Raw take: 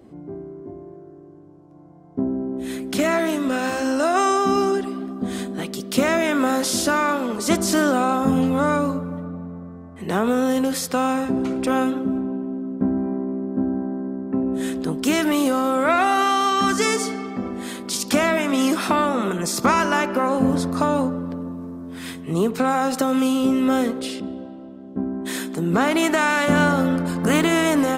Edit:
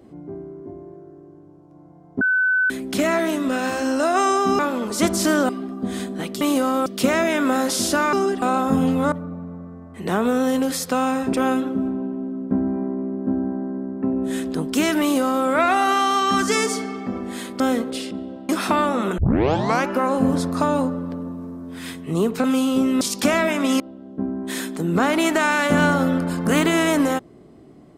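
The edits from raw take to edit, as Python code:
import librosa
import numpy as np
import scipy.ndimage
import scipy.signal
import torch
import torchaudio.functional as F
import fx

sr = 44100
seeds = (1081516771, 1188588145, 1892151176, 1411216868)

y = fx.edit(x, sr, fx.bleep(start_s=2.21, length_s=0.49, hz=1510.0, db=-15.5),
    fx.swap(start_s=4.59, length_s=0.29, other_s=7.07, other_length_s=0.9),
    fx.cut(start_s=8.67, length_s=0.47),
    fx.cut(start_s=11.35, length_s=0.28),
    fx.duplicate(start_s=15.31, length_s=0.45, to_s=5.8),
    fx.swap(start_s=17.9, length_s=0.79, other_s=23.69, other_length_s=0.89),
    fx.tape_start(start_s=19.38, length_s=0.7),
    fx.cut(start_s=22.64, length_s=0.48), tone=tone)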